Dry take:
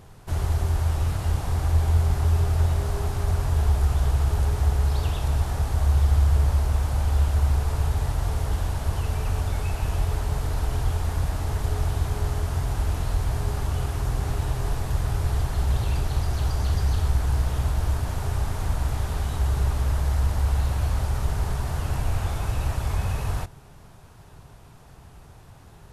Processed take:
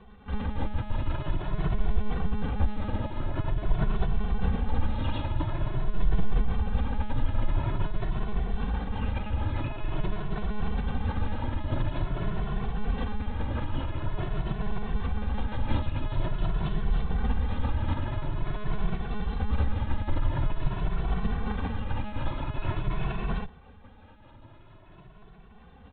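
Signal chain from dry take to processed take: monotone LPC vocoder at 8 kHz 210 Hz; endless flanger 2.2 ms +0.47 Hz

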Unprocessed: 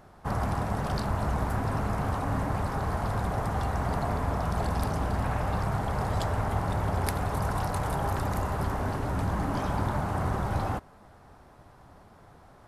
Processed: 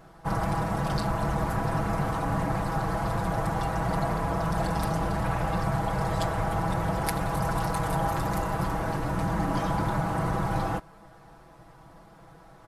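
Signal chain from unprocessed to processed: comb 6.1 ms, depth 88%

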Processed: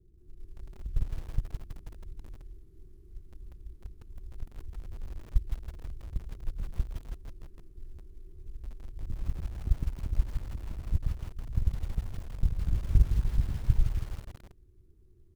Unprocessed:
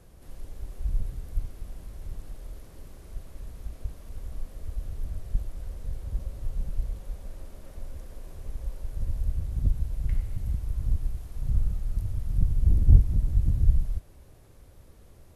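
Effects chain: FFT filter 130 Hz 0 dB, 260 Hz -3 dB, 370 Hz +12 dB, 540 Hz -16 dB, 1.2 kHz -10 dB; bands offset in time lows, highs 180 ms, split 640 Hz; reverse; compression 8:1, threshold -23 dBFS, peak gain reduction 14.5 dB; reverse; bass shelf 220 Hz +8.5 dB; in parallel at +0.5 dB: peak limiter -18.5 dBFS, peak gain reduction 9.5 dB; on the sum: companded quantiser 8-bit; gate -11 dBFS, range -21 dB; bit-crushed delay 162 ms, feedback 55%, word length 7-bit, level -7.5 dB

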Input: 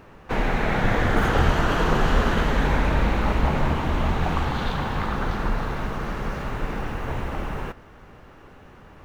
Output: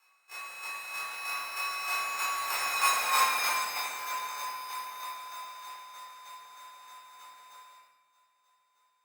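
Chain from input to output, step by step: sorted samples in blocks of 32 samples; Doppler pass-by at 3.11 s, 14 m/s, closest 5.6 m; high-pass 1.3 kHz 24 dB/octave; peaking EQ 3.6 kHz -7 dB 0.3 oct; frequency shift -310 Hz; square tremolo 3.2 Hz, depth 60%, duty 15%; simulated room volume 450 m³, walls mixed, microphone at 4 m; Opus 48 kbps 48 kHz

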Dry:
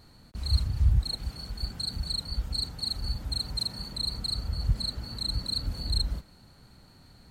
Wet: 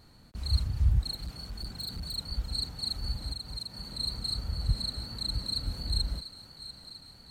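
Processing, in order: on a send: thinning echo 693 ms, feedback 69%, high-pass 470 Hz, level -12 dB; 1.13–2.17 s: on the sum: hard clipper -31 dBFS, distortion -19 dB; 3.32–3.99 s: compression, threshold -33 dBFS, peak gain reduction 7.5 dB; trim -2 dB

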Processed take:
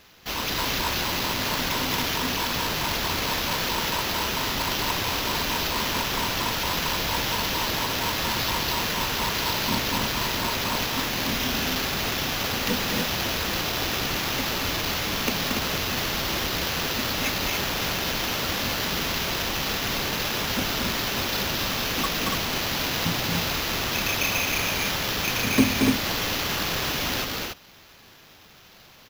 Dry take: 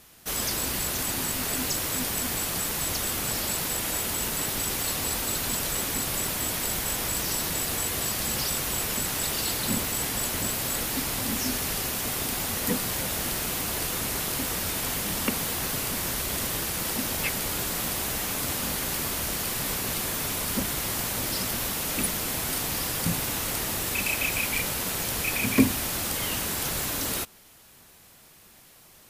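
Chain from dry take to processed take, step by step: loudspeakers at several distances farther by 78 m -4 dB, 98 m -4 dB; sample-and-hold 5×

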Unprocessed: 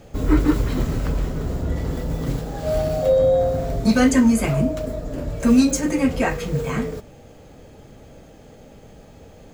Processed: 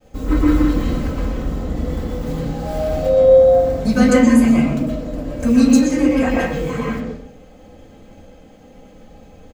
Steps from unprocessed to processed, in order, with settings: expander -42 dBFS; comb 3.9 ms, depth 51%; reverberation RT60 0.65 s, pre-delay 112 ms, DRR -3 dB; trim -3.5 dB

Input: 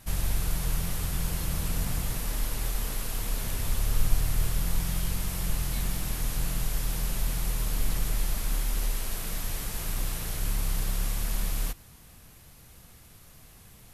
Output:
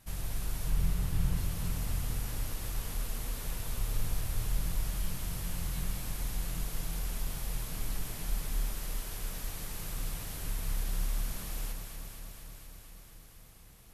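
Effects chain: 0.70–1.37 s: tone controls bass +7 dB, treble -4 dB; echo whose repeats swap between lows and highs 118 ms, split 1.2 kHz, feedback 88%, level -5 dB; trim -8.5 dB

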